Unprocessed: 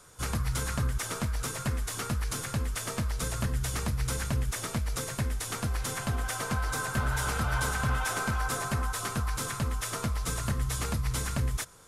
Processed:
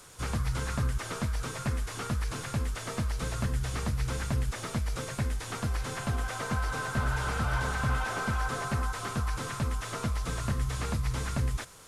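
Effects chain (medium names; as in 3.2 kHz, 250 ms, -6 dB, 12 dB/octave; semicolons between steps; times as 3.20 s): one-bit delta coder 64 kbps, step -46 dBFS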